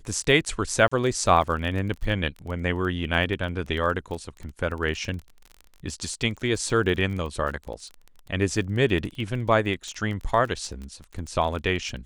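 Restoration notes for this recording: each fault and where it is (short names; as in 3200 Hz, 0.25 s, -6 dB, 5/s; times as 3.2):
crackle 24/s -32 dBFS
0.88–0.92 gap 35 ms
6.7 gap 2.3 ms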